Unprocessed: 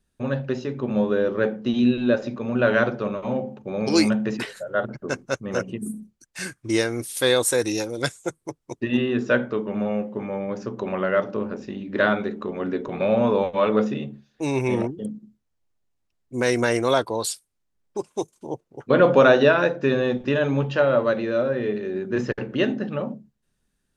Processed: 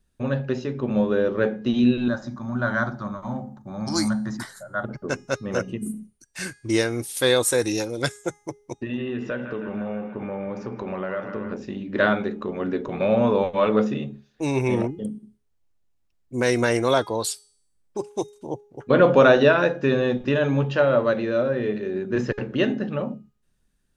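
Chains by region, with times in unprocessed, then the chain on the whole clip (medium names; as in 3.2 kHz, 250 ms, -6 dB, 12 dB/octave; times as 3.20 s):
2.08–4.84 s: treble shelf 5.3 kHz +4.5 dB + static phaser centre 1.1 kHz, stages 4
8.73–11.52 s: compression 3:1, threshold -27 dBFS + treble shelf 5.9 kHz -11.5 dB + feedback echo behind a band-pass 159 ms, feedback 70%, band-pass 1.4 kHz, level -7 dB
whole clip: bass shelf 80 Hz +6.5 dB; de-hum 413.6 Hz, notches 26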